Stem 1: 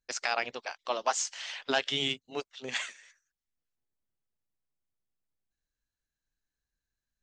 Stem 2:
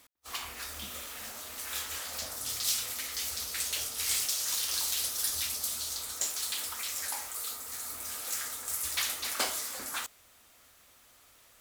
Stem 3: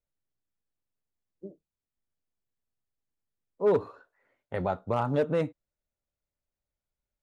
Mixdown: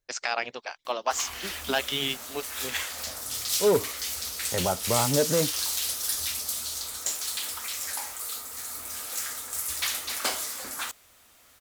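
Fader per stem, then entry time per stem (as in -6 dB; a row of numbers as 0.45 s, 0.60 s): +1.5 dB, +2.5 dB, +2.0 dB; 0.00 s, 0.85 s, 0.00 s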